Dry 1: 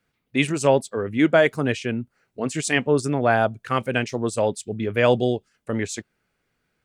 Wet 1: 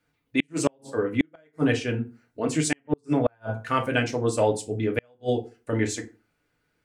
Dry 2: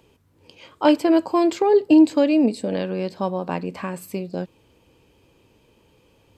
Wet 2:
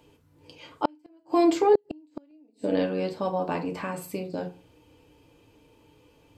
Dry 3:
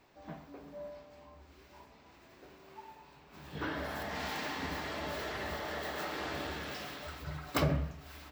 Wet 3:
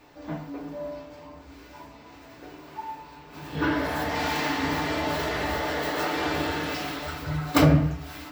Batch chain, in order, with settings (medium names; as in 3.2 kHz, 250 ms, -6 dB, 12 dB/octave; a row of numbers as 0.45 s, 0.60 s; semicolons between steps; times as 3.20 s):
FDN reverb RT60 0.34 s, low-frequency decay 1.05×, high-frequency decay 0.65×, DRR 1.5 dB; inverted gate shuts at -7 dBFS, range -42 dB; normalise loudness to -27 LUFS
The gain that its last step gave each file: -2.5 dB, -3.5 dB, +8.0 dB